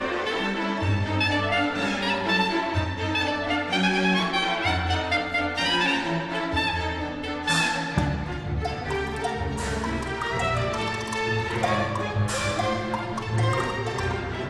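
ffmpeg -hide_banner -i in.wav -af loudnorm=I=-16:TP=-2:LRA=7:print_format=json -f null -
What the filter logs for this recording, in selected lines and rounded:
"input_i" : "-25.3",
"input_tp" : "-9.0",
"input_lra" : "3.2",
"input_thresh" : "-35.3",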